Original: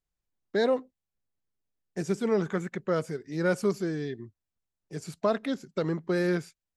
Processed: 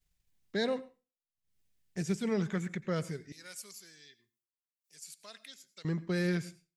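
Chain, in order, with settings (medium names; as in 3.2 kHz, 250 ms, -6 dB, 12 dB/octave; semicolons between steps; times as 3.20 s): high-order bell 620 Hz -8 dB 2.8 oct; upward compressor, threshold -51 dBFS; expander -59 dBFS; 3.32–5.85 s: differentiator; reverberation RT60 0.30 s, pre-delay 83 ms, DRR 17 dB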